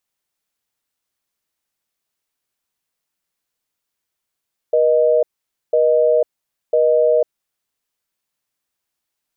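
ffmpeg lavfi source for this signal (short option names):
-f lavfi -i "aevalsrc='0.2*(sin(2*PI*480*t)+sin(2*PI*620*t))*clip(min(mod(t,1),0.5-mod(t,1))/0.005,0,1)':d=2.51:s=44100"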